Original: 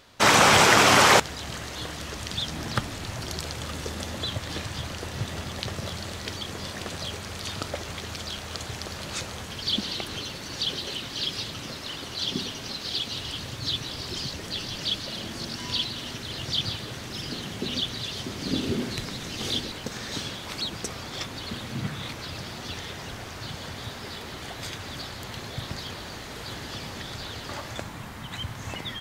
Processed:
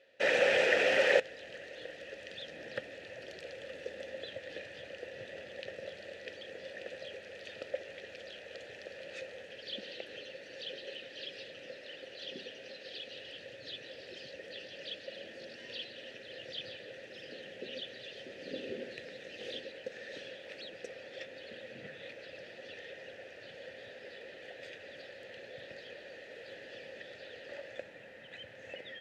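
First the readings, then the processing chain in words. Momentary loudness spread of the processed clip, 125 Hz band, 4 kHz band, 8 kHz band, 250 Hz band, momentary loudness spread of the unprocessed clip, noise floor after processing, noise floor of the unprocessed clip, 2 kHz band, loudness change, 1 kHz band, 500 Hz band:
6 LU, -26.5 dB, -15.5 dB, -25.0 dB, -18.0 dB, 9 LU, -52 dBFS, -39 dBFS, -8.5 dB, -11.5 dB, -20.5 dB, -3.5 dB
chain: vowel filter e; trim +2 dB

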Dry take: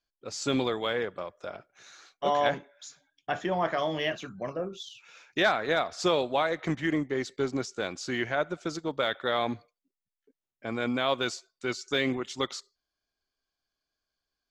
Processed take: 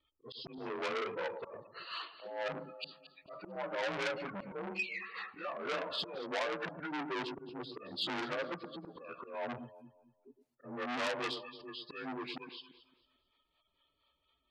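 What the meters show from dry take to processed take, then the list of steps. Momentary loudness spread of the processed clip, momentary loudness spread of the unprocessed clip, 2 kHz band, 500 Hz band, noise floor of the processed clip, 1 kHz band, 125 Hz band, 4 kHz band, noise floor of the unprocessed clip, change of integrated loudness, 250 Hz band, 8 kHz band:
13 LU, 14 LU, -8.0 dB, -10.5 dB, -81 dBFS, -10.0 dB, -14.0 dB, -7.5 dB, under -85 dBFS, -10.0 dB, -12.0 dB, -16.0 dB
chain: frequency axis rescaled in octaves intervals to 88%; spectral gate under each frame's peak -15 dB strong; bass shelf 100 Hz -4 dB; compression 4:1, threshold -43 dBFS, peak gain reduction 16.5 dB; harmonic tremolo 4.3 Hz, depth 70%, crossover 440 Hz; slow attack 377 ms; echo whose repeats swap between lows and highs 112 ms, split 1 kHz, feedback 54%, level -10 dB; transformer saturation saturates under 3.9 kHz; trim +15.5 dB

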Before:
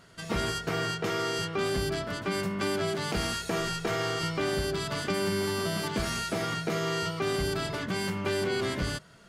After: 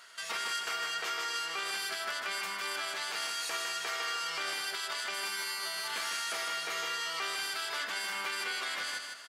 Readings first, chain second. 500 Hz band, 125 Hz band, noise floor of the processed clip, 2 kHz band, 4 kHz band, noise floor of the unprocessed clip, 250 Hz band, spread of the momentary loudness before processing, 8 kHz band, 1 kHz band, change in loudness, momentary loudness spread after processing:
-16.0 dB, under -30 dB, -42 dBFS, 0.0 dB, +0.5 dB, -50 dBFS, -24.5 dB, 3 LU, +0.5 dB, -3.0 dB, -3.5 dB, 1 LU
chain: high-pass 1.2 kHz 12 dB/octave; peak limiter -33 dBFS, peak gain reduction 11.5 dB; feedback delay 154 ms, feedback 40%, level -5 dB; trim +6 dB

